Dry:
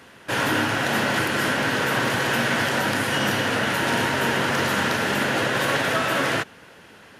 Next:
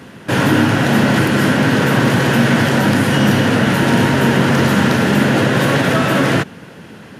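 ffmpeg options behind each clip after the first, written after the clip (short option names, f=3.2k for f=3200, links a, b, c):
-filter_complex "[0:a]equalizer=f=170:t=o:w=2.3:g=13,asplit=2[a][b];[b]alimiter=limit=-14.5dB:level=0:latency=1,volume=-3dB[c];[a][c]amix=inputs=2:normalize=0,volume=1dB"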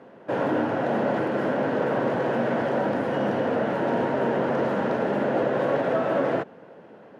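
-af "bandpass=f=590:t=q:w=1.7:csg=0,volume=-3dB"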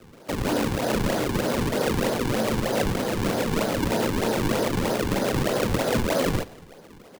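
-af "acrusher=samples=39:mix=1:aa=0.000001:lfo=1:lforange=62.4:lforate=3.2,afreqshift=-13,aecho=1:1:90|180|270|360:0.0891|0.0463|0.0241|0.0125"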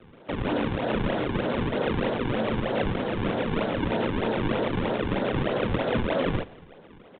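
-af "aresample=8000,aresample=44100,volume=-2dB"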